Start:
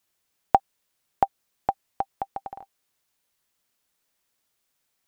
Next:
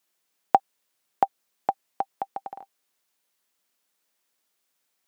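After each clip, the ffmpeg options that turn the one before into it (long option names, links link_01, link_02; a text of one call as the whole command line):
ffmpeg -i in.wav -af "highpass=200" out.wav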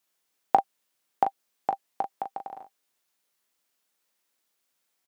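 ffmpeg -i in.wav -af "aecho=1:1:18|39:0.188|0.447,volume=-2dB" out.wav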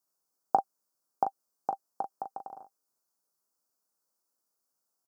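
ffmpeg -i in.wav -af "asuperstop=centerf=2600:order=8:qfactor=0.81,volume=-4.5dB" out.wav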